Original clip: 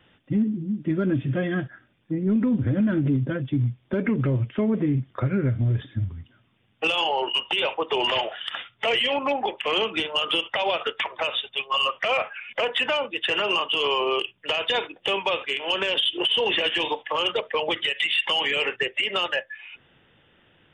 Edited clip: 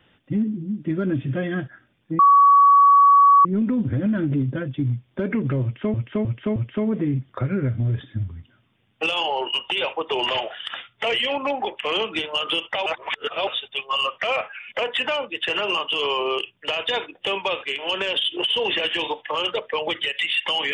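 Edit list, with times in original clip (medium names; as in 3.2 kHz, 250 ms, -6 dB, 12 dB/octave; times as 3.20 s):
2.19 s: add tone 1.13 kHz -9.5 dBFS 1.26 s
4.37–4.68 s: loop, 4 plays
10.67–11.28 s: reverse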